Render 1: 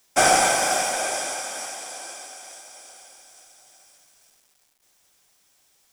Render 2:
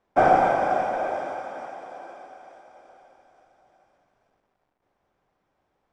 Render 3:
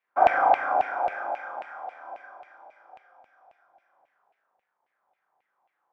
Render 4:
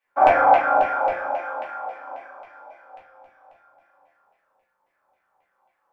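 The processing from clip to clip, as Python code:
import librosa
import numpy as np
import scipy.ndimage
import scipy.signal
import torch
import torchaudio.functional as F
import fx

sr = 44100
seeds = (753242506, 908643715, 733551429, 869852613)

y1 = scipy.signal.sosfilt(scipy.signal.butter(2, 1000.0, 'lowpass', fs=sr, output='sos'), x)
y1 = y1 * librosa.db_to_amplitude(3.0)
y2 = fx.room_flutter(y1, sr, wall_m=6.5, rt60_s=0.9)
y2 = fx.filter_lfo_bandpass(y2, sr, shape='saw_down', hz=3.7, low_hz=720.0, high_hz=2500.0, q=3.7)
y2 = y2 * librosa.db_to_amplitude(3.5)
y3 = fx.room_shoebox(y2, sr, seeds[0], volume_m3=140.0, walls='furnished', distance_m=2.4)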